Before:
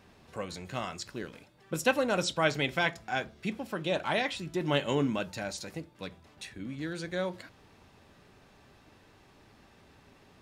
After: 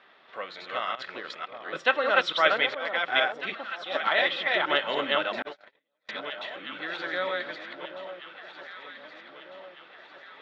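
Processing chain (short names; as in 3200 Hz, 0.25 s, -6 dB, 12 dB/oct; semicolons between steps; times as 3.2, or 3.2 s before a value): reverse delay 0.291 s, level -1 dB; speaker cabinet 470–4000 Hz, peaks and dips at 630 Hz +4 dB, 1300 Hz +10 dB, 1900 Hz +9 dB, 3400 Hz +9 dB; 0.95–1.35 negative-ratio compressor -39 dBFS, ratio -1; 2.66–3.95 auto swell 0.416 s; echo with dull and thin repeats by turns 0.775 s, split 1100 Hz, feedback 69%, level -9 dB; 5.42–6.09 gate -27 dBFS, range -46 dB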